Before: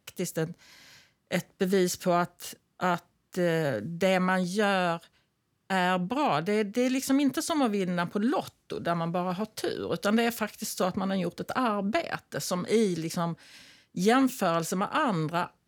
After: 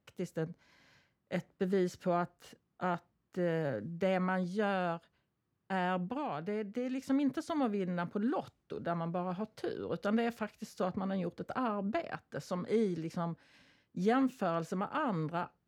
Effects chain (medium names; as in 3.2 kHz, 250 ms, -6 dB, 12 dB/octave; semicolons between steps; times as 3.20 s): 5.97–7.10 s: compression, threshold -26 dBFS, peak gain reduction 5.5 dB; low-pass 1.5 kHz 6 dB/octave; trim -6 dB